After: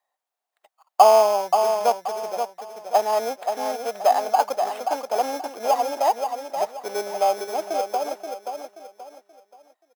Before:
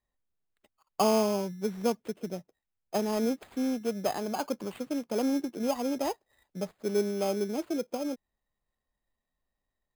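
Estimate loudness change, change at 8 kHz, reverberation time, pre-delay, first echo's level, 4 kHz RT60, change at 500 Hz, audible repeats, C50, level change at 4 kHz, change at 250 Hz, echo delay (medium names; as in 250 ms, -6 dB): +8.5 dB, +6.5 dB, no reverb, no reverb, -6.5 dB, no reverb, +9.0 dB, 3, no reverb, +6.5 dB, -11.0 dB, 529 ms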